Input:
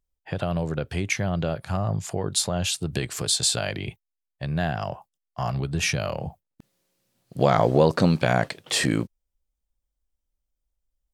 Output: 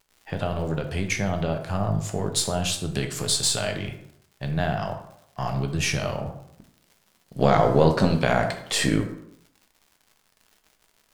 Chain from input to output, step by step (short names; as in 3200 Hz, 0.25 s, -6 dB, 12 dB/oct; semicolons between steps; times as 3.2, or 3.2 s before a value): half-wave gain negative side -3 dB; crackle 150/s -44 dBFS; plate-style reverb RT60 0.74 s, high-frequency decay 0.6×, DRR 4.5 dB